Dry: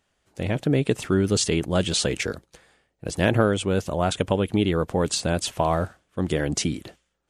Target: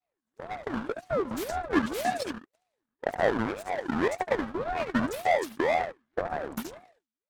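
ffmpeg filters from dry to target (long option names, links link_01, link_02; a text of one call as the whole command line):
ffmpeg -i in.wav -filter_complex "[0:a]asettb=1/sr,asplit=3[link_01][link_02][link_03];[link_01]atrim=end=1.894[link_04];[link_02]atrim=start=1.89:end=2.31,asetpts=PTS-STARTPTS,afade=type=in:duration=0.004:curve=qsin,afade=type=out:start_time=0.416:duration=0.004:curve=qsin,aeval=exprs='val(0)+0.5*0.0473*sgn(val(0))':channel_layout=same[link_05];[link_03]atrim=start=2.306[link_06];[link_04][link_05]acrossfade=duration=0.004:curve1=hsin:curve2=qsin[link_07];[link_07][link_06]acrossfade=duration=0.004:curve1=qsin:curve2=hsin,aexciter=amount=4.5:drive=7.9:freq=5600,afwtdn=0.0447,asplit=3[link_08][link_09][link_10];[link_08]bandpass=frequency=730:width_type=q:width=8,volume=0dB[link_11];[link_09]bandpass=frequency=1090:width_type=q:width=8,volume=-6dB[link_12];[link_10]bandpass=frequency=2440:width_type=q:width=8,volume=-9dB[link_13];[link_11][link_12][link_13]amix=inputs=3:normalize=0,adynamicequalizer=threshold=0.0141:dfrequency=630:dqfactor=1.1:tfrequency=630:tqfactor=1.1:attack=5:release=100:ratio=0.375:range=1.5:mode=boostabove:tftype=bell,aphaser=in_gain=1:out_gain=1:delay=3:decay=0.76:speed=0.33:type=sinusoidal,aecho=1:1:71:0.355,aeval=exprs='abs(val(0))':channel_layout=same,asplit=2[link_14][link_15];[link_15]acompressor=threshold=-36dB:ratio=6,volume=0dB[link_16];[link_14][link_16]amix=inputs=2:normalize=0,highshelf=frequency=9700:gain=-8,bandreject=frequency=2300:width=11,aeval=exprs='val(0)*sin(2*PI*480*n/s+480*0.55/1.9*sin(2*PI*1.9*n/s))':channel_layout=same,volume=3.5dB" out.wav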